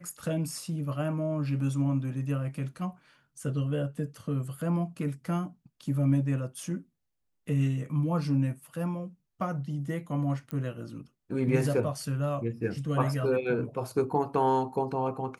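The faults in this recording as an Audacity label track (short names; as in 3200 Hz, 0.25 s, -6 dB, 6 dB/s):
10.510000	10.510000	pop -22 dBFS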